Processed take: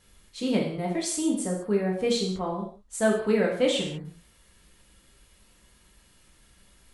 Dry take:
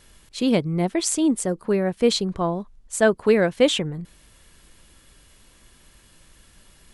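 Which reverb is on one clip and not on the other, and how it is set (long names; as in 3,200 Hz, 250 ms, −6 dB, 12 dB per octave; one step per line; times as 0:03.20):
reverb whose tail is shaped and stops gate 220 ms falling, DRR −2.5 dB
level −9.5 dB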